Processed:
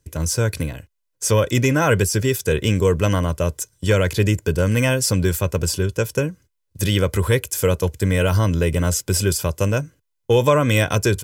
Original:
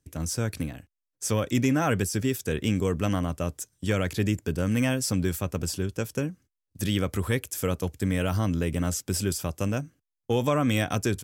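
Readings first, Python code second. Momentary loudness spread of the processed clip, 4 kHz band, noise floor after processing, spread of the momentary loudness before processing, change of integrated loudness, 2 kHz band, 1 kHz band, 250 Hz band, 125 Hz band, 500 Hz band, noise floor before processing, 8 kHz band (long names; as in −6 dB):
7 LU, +8.5 dB, −74 dBFS, 8 LU, +8.0 dB, +9.0 dB, +7.5 dB, +3.5 dB, +9.0 dB, +10.0 dB, −85 dBFS, +8.5 dB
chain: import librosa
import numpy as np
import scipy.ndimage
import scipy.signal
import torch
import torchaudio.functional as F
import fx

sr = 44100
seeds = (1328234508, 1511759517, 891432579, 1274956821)

y = x + 0.51 * np.pad(x, (int(2.0 * sr / 1000.0), 0))[:len(x)]
y = y * 10.0 ** (7.5 / 20.0)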